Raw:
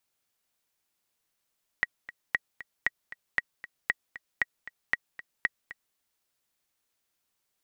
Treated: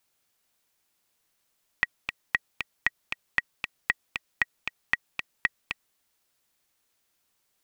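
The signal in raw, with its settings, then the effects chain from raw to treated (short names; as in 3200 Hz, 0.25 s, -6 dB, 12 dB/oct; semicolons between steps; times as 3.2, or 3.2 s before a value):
metronome 232 bpm, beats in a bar 2, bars 8, 1910 Hz, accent 16.5 dB -11 dBFS
rattling part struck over -56 dBFS, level -16 dBFS; in parallel at -1 dB: limiter -18.5 dBFS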